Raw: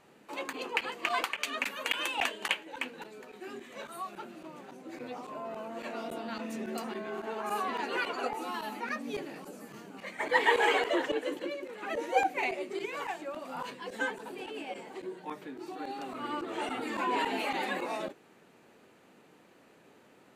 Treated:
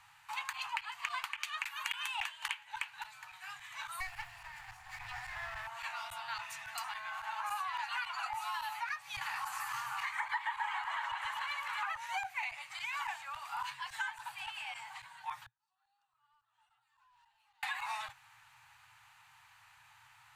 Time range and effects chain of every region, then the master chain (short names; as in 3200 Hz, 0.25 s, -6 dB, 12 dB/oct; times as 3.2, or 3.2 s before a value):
4–5.67 minimum comb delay 0.4 ms + small resonant body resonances 290/710/1800 Hz, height 9 dB, ringing for 25 ms
9.21–11.97 bell 1100 Hz +10.5 dB 1.2 oct + echo with dull and thin repeats by turns 0.129 s, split 1300 Hz, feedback 55%, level -5 dB + mismatched tape noise reduction encoder only
15.41–17.63 hard clip -28.5 dBFS + bell 2200 Hz -11.5 dB 0.26 oct + flipped gate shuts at -37 dBFS, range -38 dB
whole clip: Chebyshev band-stop 120–860 Hz, order 4; compressor 8:1, threshold -38 dBFS; gain +3.5 dB